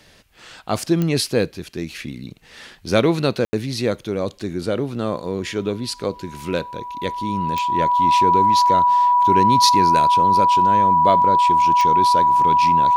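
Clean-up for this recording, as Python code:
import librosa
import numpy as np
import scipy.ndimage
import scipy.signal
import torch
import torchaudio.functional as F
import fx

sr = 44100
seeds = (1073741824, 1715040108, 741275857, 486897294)

y = fx.fix_declick_ar(x, sr, threshold=10.0)
y = fx.notch(y, sr, hz=980.0, q=30.0)
y = fx.fix_ambience(y, sr, seeds[0], print_start_s=0.0, print_end_s=0.5, start_s=3.45, end_s=3.53)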